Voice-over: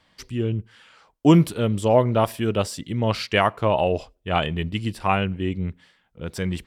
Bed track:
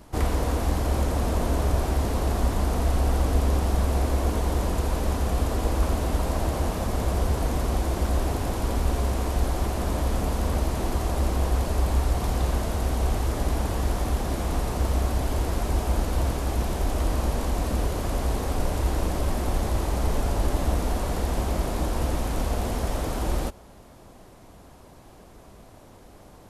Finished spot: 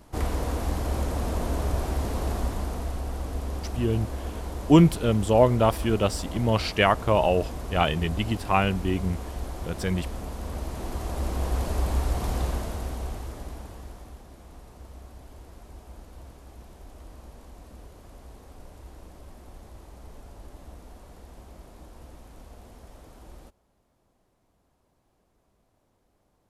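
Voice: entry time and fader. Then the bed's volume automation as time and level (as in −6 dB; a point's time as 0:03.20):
3.45 s, −1.0 dB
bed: 0:02.32 −3.5 dB
0:03.04 −9.5 dB
0:10.38 −9.5 dB
0:11.65 −2.5 dB
0:12.40 −2.5 dB
0:14.30 −21 dB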